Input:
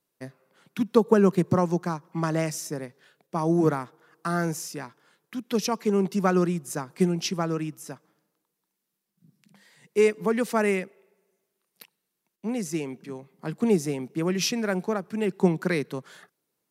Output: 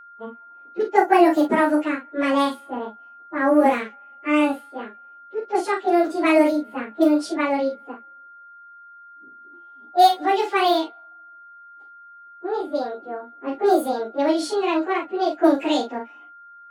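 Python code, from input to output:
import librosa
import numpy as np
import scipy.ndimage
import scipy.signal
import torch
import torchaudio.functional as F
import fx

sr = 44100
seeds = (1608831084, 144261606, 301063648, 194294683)

y = fx.pitch_bins(x, sr, semitones=9.5)
y = fx.env_lowpass(y, sr, base_hz=820.0, full_db=-21.0)
y = fx.room_early_taps(y, sr, ms=(37, 50), db=(-6.5, -14.5))
y = y + 10.0 ** (-49.0 / 20.0) * np.sin(2.0 * np.pi * 1400.0 * np.arange(len(y)) / sr)
y = y * librosa.db_to_amplitude(6.5)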